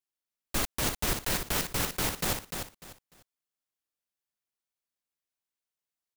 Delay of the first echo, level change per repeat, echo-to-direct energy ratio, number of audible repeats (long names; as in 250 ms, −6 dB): 298 ms, −12.0 dB, −6.0 dB, 3